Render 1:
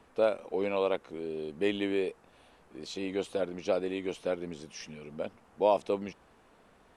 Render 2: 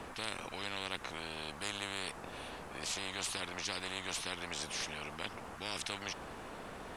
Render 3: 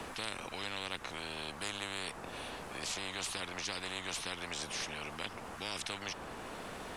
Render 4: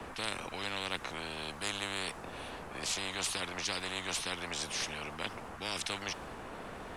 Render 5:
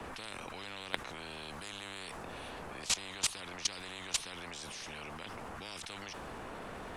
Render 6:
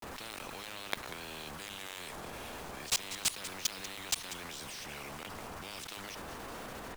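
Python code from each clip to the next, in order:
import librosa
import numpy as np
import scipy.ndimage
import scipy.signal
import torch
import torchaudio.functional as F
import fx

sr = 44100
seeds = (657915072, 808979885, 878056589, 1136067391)

y1 = fx.spectral_comp(x, sr, ratio=10.0)
y1 = y1 * 10.0 ** (-8.0 / 20.0)
y2 = fx.band_squash(y1, sr, depth_pct=40)
y3 = fx.band_widen(y2, sr, depth_pct=70)
y3 = y3 * 10.0 ** (3.0 / 20.0)
y4 = fx.level_steps(y3, sr, step_db=17)
y4 = y4 * 10.0 ** (6.0 / 20.0)
y5 = fx.block_float(y4, sr, bits=3)
y5 = fx.vibrato(y5, sr, rate_hz=0.34, depth_cents=82.0)
y5 = y5 + 10.0 ** (-13.0 / 20.0) * np.pad(y5, (int(191 * sr / 1000.0), 0))[:len(y5)]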